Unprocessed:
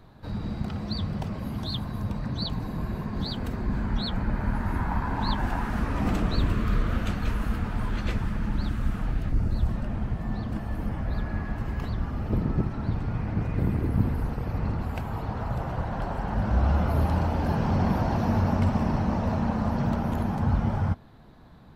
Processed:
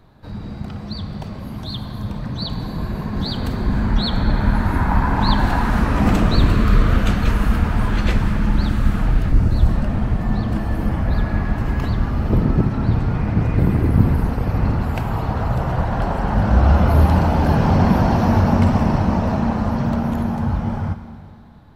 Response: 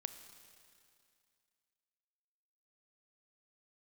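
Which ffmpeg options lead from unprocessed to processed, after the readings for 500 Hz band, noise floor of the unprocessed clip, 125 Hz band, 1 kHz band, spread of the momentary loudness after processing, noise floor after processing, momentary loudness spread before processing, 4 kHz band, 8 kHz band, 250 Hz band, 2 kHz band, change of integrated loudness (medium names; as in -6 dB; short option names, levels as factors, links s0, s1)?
+9.0 dB, -36 dBFS, +9.0 dB, +9.0 dB, 12 LU, -33 dBFS, 7 LU, +8.0 dB, no reading, +9.0 dB, +9.5 dB, +9.5 dB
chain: -filter_complex "[0:a]dynaudnorm=f=550:g=11:m=2.99[s0];[1:a]atrim=start_sample=2205[s1];[s0][s1]afir=irnorm=-1:irlink=0,volume=1.58"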